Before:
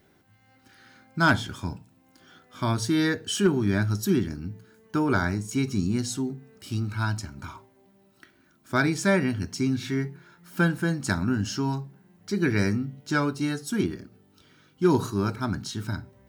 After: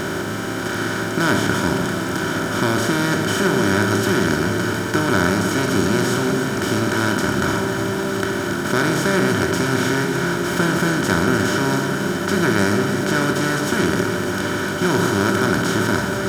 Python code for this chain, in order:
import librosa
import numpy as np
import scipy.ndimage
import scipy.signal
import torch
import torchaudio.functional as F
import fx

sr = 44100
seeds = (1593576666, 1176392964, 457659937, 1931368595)

y = fx.bin_compress(x, sr, power=0.2)
y = fx.echo_alternate(y, sr, ms=151, hz=880.0, feedback_pct=85, wet_db=-8)
y = y * librosa.db_to_amplitude(-3.5)